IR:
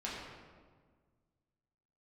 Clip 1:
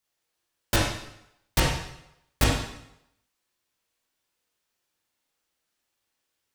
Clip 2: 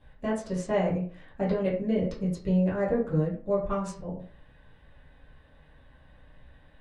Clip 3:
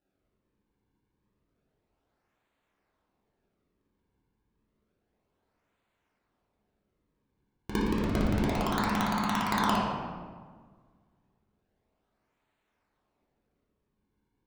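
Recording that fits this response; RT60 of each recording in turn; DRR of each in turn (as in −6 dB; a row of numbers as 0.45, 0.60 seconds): 3; 0.80, 0.45, 1.6 seconds; −5.0, −8.5, −7.0 decibels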